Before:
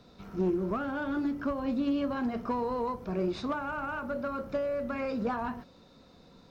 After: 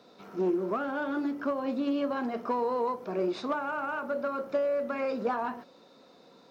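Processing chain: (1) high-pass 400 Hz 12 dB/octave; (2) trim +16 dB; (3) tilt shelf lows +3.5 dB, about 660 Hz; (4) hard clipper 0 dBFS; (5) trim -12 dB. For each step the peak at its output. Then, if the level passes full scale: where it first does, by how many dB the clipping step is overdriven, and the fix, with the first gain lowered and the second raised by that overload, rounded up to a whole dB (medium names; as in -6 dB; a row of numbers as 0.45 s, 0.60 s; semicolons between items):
-22.5 dBFS, -6.5 dBFS, -5.5 dBFS, -5.5 dBFS, -17.5 dBFS; nothing clips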